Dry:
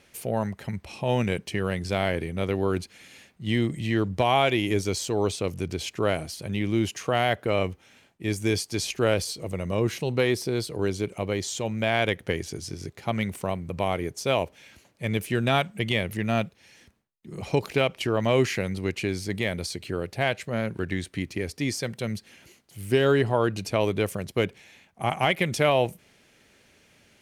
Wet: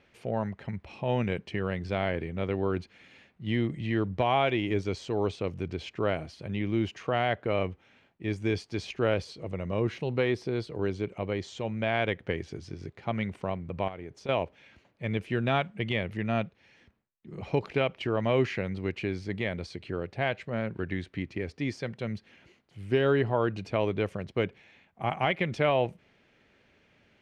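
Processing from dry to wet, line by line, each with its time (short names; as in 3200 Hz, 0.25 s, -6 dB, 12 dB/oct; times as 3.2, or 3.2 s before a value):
13.88–14.29 compressor, threshold -32 dBFS
whole clip: LPF 3000 Hz 12 dB/oct; gain -3.5 dB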